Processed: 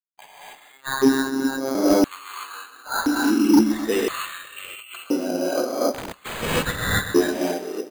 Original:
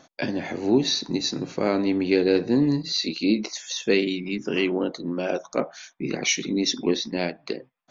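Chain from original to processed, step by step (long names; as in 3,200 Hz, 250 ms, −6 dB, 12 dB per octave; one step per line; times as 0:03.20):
spectral dynamics exaggerated over time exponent 1.5
parametric band 830 Hz +3.5 dB 1.9 octaves
on a send: repeating echo 129 ms, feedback 50%, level −13 dB
on the sum: reverb whose tail is shaped and stops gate 310 ms rising, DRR −7.5 dB
auto-filter high-pass square 0.49 Hz 280–4,100 Hz
bad sample-rate conversion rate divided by 8×, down none, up hold
in parallel at −5.5 dB: soft clipping −4.5 dBFS, distortion −13 dB
on the sum: bit-depth reduction 10 bits, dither none
0:00.72–0:01.75: phases set to zero 134 Hz
0:04.62–0:05.04: compressor whose output falls as the input rises −30 dBFS, ratio −1
0:05.94–0:06.41: wrap-around overflow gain 17.5 dB
level −9 dB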